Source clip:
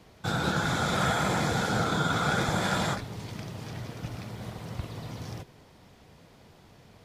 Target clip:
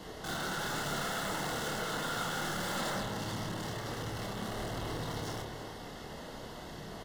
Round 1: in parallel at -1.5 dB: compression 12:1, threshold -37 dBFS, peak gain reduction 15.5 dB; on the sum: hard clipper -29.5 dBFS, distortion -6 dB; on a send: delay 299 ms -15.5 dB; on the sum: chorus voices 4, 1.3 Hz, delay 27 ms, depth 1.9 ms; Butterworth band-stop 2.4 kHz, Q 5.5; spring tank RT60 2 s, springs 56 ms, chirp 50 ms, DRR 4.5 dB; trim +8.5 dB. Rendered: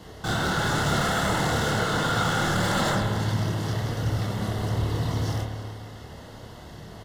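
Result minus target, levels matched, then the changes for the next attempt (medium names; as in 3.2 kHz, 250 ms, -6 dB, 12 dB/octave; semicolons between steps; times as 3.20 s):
125 Hz band +4.5 dB; hard clipper: distortion -5 dB
change: hard clipper -41 dBFS, distortion -2 dB; add after Butterworth band-stop: peaking EQ 89 Hz -12.5 dB 0.98 oct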